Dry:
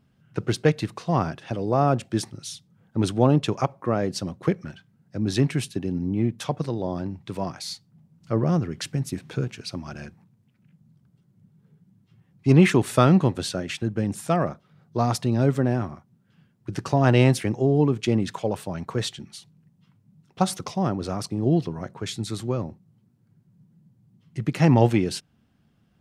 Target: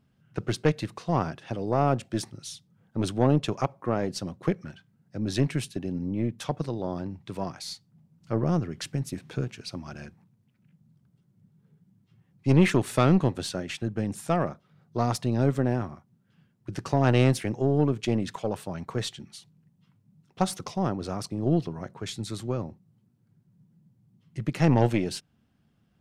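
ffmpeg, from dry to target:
-af "aeval=exprs='(tanh(3.16*val(0)+0.5)-tanh(0.5))/3.16':c=same,volume=0.841"

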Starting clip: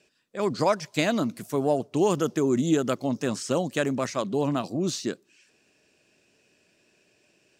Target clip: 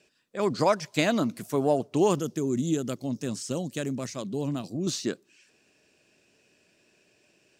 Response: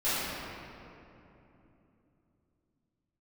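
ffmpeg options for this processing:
-filter_complex "[0:a]asettb=1/sr,asplit=3[s0][s1][s2];[s0]atrim=end=2.194[s3];[s1]atrim=start=2.19:end=4.87,asetpts=PTS-STARTPTS,afade=t=in:d=0.004:c=qsin,afade=t=out:st=2.676:d=0.004:c=qsin,equalizer=f=1100:w=0.41:g=-11.5[s4];[s2]atrim=start=4.866[s5];[s3][s4]acrossfade=d=0.004:c1=hsin:c2=qsin[s6];[s6][s5]acrossfade=d=0.004:c1=qsin:c2=hsin"

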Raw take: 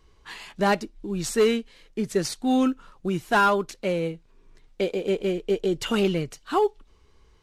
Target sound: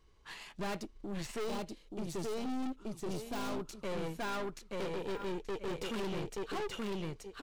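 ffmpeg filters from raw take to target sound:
-filter_complex "[0:a]deesser=0.75,aecho=1:1:878|1756|2634:0.708|0.135|0.0256,aeval=exprs='(tanh(35.5*val(0)+0.65)-tanh(0.65))/35.5':c=same,asettb=1/sr,asplit=3[s0][s1][s2];[s0]atrim=end=1.444[s3];[s1]atrim=start=1.44:end=3.82,asetpts=PTS-STARTPTS,afade=t=in:d=0.004:c=qsin,afade=t=out:st=2.376:d=0.004:c=qsin,equalizer=f=1800:t=o:w=1:g=-7.5[s4];[s2]atrim=start=3.816[s5];[s3][s4]acrossfade=d=0.004:c1=hsin:c2=qsin[s6];[s6][s5]acrossfade=d=0.004:c1=qsin:c2=hsin,volume=0.596"

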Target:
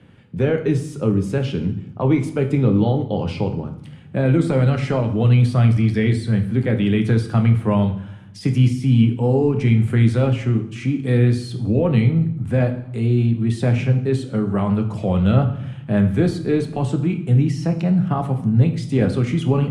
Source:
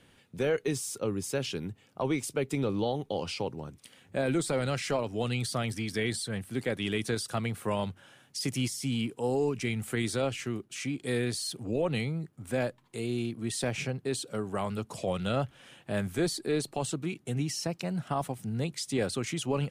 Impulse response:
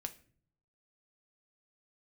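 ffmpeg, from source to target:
-filter_complex "[0:a]acrossover=split=100[s0][s1];[s1]bass=f=250:g=14,treble=f=4000:g=-15[s2];[s0][s2]amix=inputs=2:normalize=0[s3];[1:a]atrim=start_sample=2205,asetrate=22932,aresample=44100[s4];[s3][s4]afir=irnorm=-1:irlink=0,volume=1.88"

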